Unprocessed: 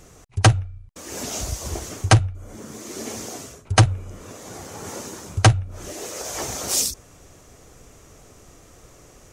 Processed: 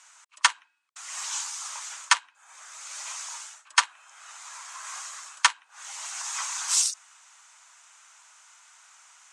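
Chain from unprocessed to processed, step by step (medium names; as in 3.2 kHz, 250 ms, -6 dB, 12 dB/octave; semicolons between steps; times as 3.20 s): Chebyshev band-pass 860–8500 Hz, order 3; frequency shift +210 Hz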